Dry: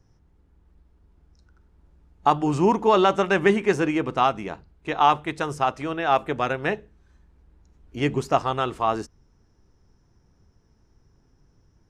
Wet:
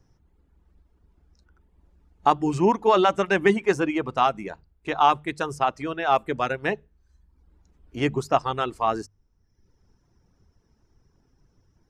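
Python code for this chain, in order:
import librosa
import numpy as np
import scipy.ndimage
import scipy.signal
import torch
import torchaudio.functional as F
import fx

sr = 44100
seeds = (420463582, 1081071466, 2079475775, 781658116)

y = fx.dereverb_blind(x, sr, rt60_s=0.82)
y = fx.hum_notches(y, sr, base_hz=50, count=3)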